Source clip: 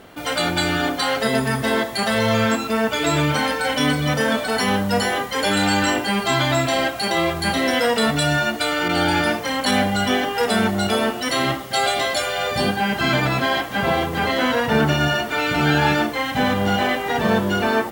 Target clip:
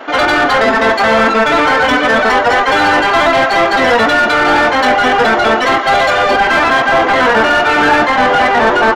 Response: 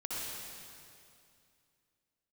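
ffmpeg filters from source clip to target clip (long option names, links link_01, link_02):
-filter_complex "[0:a]afftfilt=real='re*between(b*sr/4096,210,7200)':imag='im*between(b*sr/4096,210,7200)':win_size=4096:overlap=0.75,asplit=2[link_01][link_02];[link_02]adelay=330,highpass=300,lowpass=3400,asoftclip=type=hard:threshold=-16.5dB,volume=-15dB[link_03];[link_01][link_03]amix=inputs=2:normalize=0,acrossover=split=1700[link_04][link_05];[link_04]crystalizer=i=10:c=0[link_06];[link_06][link_05]amix=inputs=2:normalize=0,atempo=2,asplit=2[link_07][link_08];[link_08]highpass=frequency=720:poles=1,volume=21dB,asoftclip=type=tanh:threshold=-5dB[link_09];[link_07][link_09]amix=inputs=2:normalize=0,lowpass=frequency=1400:poles=1,volume=-6dB,volume=4dB"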